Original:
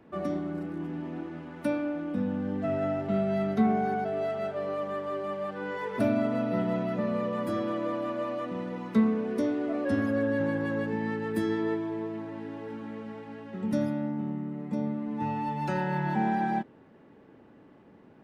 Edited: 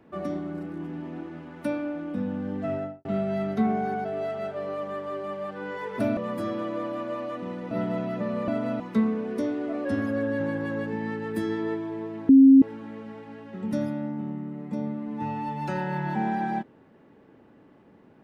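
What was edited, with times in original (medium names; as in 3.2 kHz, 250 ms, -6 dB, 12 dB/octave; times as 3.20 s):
2.71–3.05 s: studio fade out
6.17–6.49 s: swap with 7.26–8.80 s
12.29–12.62 s: bleep 269 Hz -9.5 dBFS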